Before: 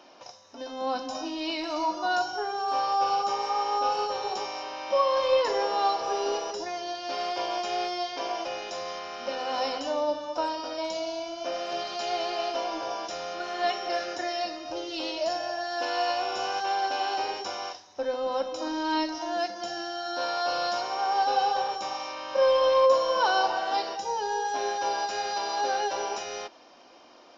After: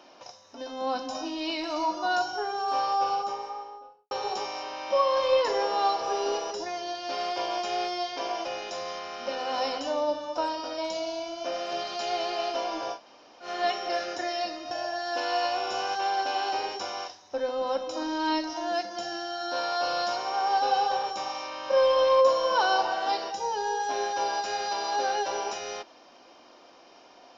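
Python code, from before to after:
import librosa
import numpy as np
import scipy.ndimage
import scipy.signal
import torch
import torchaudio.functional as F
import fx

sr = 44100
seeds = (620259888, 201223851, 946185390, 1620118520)

y = fx.studio_fade_out(x, sr, start_s=2.8, length_s=1.31)
y = fx.edit(y, sr, fx.room_tone_fill(start_s=12.95, length_s=0.5, crossfade_s=0.1),
    fx.cut(start_s=14.71, length_s=0.65), tone=tone)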